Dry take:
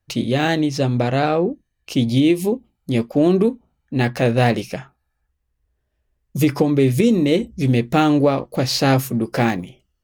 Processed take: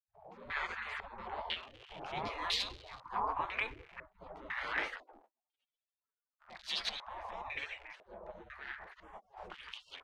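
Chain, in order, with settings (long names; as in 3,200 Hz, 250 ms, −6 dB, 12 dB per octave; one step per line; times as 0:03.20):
source passing by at 0:02.27, 13 m/s, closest 11 metres
transient designer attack −10 dB, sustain +5 dB
three-band delay without the direct sound mids, highs, lows 220/360 ms, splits 220/1,100 Hz
speech leveller within 4 dB 2 s
surface crackle 240 per second −49 dBFS
gate on every frequency bin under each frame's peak −30 dB weak
low-pass on a step sequencer 2 Hz 600–4,000 Hz
level +7 dB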